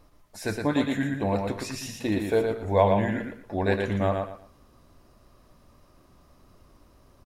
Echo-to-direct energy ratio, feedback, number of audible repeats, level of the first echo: −4.0 dB, 25%, 3, −4.5 dB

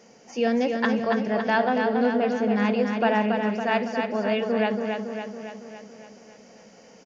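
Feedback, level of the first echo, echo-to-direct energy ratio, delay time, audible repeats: 59%, −5.0 dB, −3.0 dB, 279 ms, 7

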